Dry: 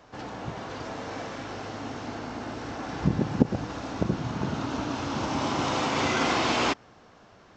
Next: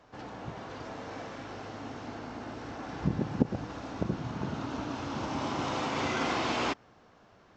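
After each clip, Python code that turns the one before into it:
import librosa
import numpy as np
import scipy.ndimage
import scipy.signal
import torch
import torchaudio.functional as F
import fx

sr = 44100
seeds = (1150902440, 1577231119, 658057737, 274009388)

y = fx.high_shelf(x, sr, hz=4500.0, db=-4.5)
y = y * librosa.db_to_amplitude(-5.0)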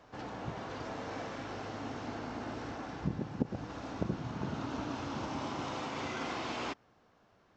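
y = fx.rider(x, sr, range_db=4, speed_s=0.5)
y = y * librosa.db_to_amplitude(-3.5)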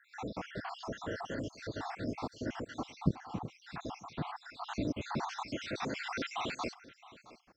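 y = fx.spec_dropout(x, sr, seeds[0], share_pct=70)
y = y + 10.0 ** (-19.0 / 20.0) * np.pad(y, (int(668 * sr / 1000.0), 0))[:len(y)]
y = y * librosa.db_to_amplitude(6.0)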